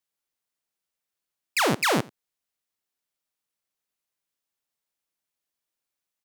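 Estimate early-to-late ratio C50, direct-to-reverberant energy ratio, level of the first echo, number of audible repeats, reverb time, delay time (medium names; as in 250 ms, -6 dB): no reverb, no reverb, -23.5 dB, 1, no reverb, 87 ms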